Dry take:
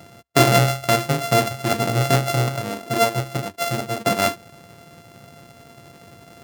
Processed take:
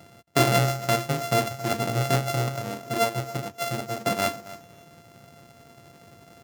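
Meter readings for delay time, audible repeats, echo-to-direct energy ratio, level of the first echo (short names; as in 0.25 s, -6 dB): 0.273 s, 2, -17.0 dB, -17.0 dB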